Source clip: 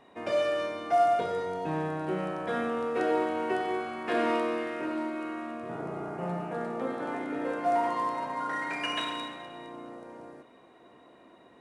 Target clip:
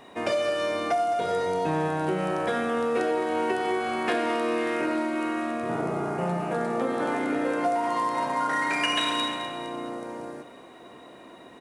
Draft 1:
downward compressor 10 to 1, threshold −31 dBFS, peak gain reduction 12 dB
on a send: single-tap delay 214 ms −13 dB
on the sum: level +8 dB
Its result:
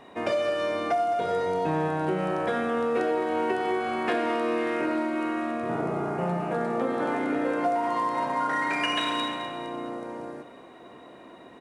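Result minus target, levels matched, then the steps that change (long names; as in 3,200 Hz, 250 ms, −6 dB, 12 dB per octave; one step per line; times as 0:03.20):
8,000 Hz band −6.0 dB
add after downward compressor: high-shelf EQ 4,400 Hz +8.5 dB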